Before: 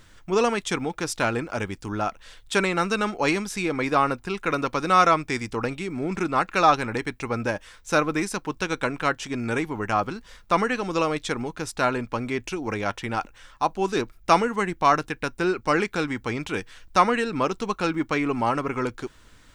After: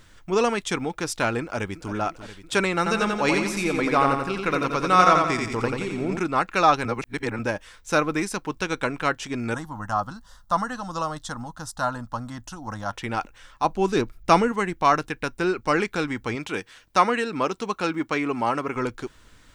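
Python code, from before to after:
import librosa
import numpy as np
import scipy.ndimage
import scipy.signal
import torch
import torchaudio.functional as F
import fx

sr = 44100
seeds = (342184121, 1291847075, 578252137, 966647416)

y = fx.echo_throw(x, sr, start_s=1.41, length_s=0.51, ms=340, feedback_pct=75, wet_db=-12.0)
y = fx.echo_feedback(y, sr, ms=87, feedback_pct=46, wet_db=-4.0, at=(2.77, 6.18))
y = fx.fixed_phaser(y, sr, hz=970.0, stages=4, at=(9.54, 12.93))
y = fx.low_shelf(y, sr, hz=330.0, db=6.0, at=(13.64, 14.52))
y = fx.highpass(y, sr, hz=170.0, slope=6, at=(16.35, 18.76))
y = fx.edit(y, sr, fx.reverse_span(start_s=6.85, length_s=0.54), tone=tone)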